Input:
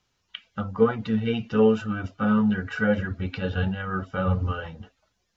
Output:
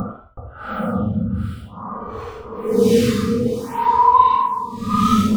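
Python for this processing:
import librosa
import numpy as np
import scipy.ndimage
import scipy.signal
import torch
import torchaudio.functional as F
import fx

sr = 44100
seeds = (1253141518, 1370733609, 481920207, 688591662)

p1 = fx.env_lowpass(x, sr, base_hz=1900.0, full_db=-17.0)
p2 = (np.mod(10.0 ** (19.0 / 20.0) * p1 + 1.0, 2.0) - 1.0) / 10.0 ** (19.0 / 20.0)
p3 = p1 + (p2 * librosa.db_to_amplitude(-7.5))
p4 = fx.spec_paint(p3, sr, seeds[0], shape='rise', start_s=1.0, length_s=0.57, low_hz=920.0, high_hz=3300.0, level_db=-16.0)
p5 = fx.granulator(p4, sr, seeds[1], grain_ms=100.0, per_s=8.8, spray_ms=100.0, spread_st=0)
p6 = fx.dynamic_eq(p5, sr, hz=4100.0, q=0.87, threshold_db=-39.0, ratio=4.0, max_db=4)
p7 = fx.paulstretch(p6, sr, seeds[2], factor=9.3, window_s=0.05, from_s=0.52)
p8 = fx.low_shelf(p7, sr, hz=76.0, db=10.0)
p9 = p8 + fx.echo_alternate(p8, sr, ms=373, hz=810.0, feedback_pct=51, wet_db=-2, dry=0)
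p10 = fx.stagger_phaser(p9, sr, hz=0.55)
y = p10 * librosa.db_to_amplitude(5.0)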